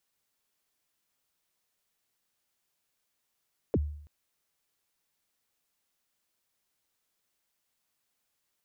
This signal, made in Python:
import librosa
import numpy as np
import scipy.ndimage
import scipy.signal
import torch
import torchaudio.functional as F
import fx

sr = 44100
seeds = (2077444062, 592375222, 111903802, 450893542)

y = fx.drum_kick(sr, seeds[0], length_s=0.33, level_db=-20.5, start_hz=560.0, end_hz=74.0, sweep_ms=41.0, decay_s=0.65, click=False)